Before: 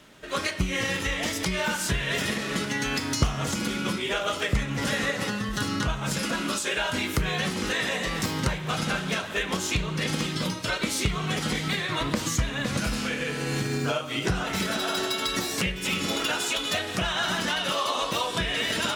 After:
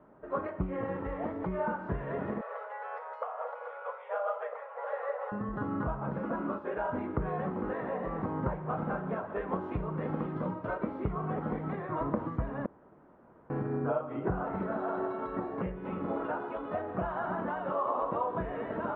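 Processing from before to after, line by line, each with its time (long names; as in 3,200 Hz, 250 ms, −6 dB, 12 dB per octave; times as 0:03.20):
0:02.41–0:05.32: linear-phase brick-wall high-pass 440 Hz
0:09.29–0:10.74: high-shelf EQ 3,800 Hz +6.5 dB
0:12.66–0:13.50: fill with room tone
whole clip: low-pass filter 1,100 Hz 24 dB per octave; low-shelf EQ 240 Hz −8.5 dB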